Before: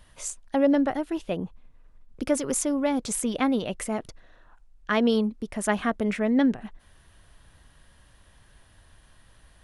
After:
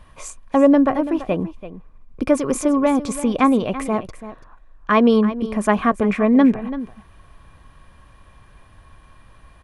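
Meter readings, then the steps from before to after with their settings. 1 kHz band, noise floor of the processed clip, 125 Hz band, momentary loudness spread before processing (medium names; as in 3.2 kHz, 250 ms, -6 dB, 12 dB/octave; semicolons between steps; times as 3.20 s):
+10.0 dB, -50 dBFS, +8.0 dB, 13 LU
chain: treble shelf 2.4 kHz -11 dB; small resonant body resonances 1.1/2.4 kHz, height 13 dB, ringing for 45 ms; on a send: delay 335 ms -14 dB; on the sum: trim +8 dB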